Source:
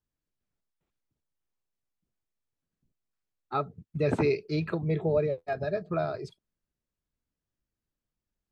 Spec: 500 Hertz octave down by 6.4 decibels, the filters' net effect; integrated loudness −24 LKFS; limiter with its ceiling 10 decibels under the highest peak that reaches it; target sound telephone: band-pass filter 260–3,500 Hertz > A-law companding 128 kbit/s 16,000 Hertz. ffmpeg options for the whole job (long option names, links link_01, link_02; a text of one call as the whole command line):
ffmpeg -i in.wav -af "equalizer=frequency=500:width_type=o:gain=-7.5,alimiter=level_in=1dB:limit=-24dB:level=0:latency=1,volume=-1dB,highpass=260,lowpass=3500,volume=15dB" -ar 16000 -c:a pcm_alaw out.wav